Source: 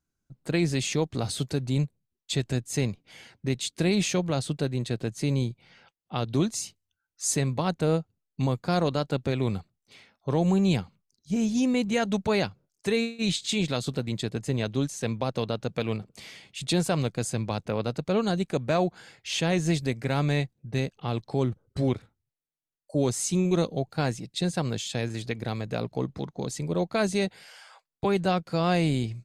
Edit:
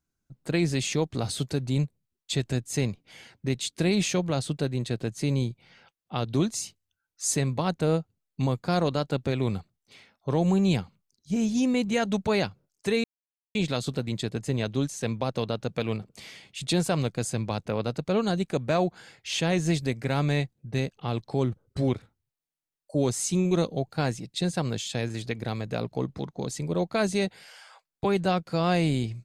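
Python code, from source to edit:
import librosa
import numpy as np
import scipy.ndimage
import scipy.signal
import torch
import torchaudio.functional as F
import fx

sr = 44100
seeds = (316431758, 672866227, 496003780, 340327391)

y = fx.edit(x, sr, fx.silence(start_s=13.04, length_s=0.51), tone=tone)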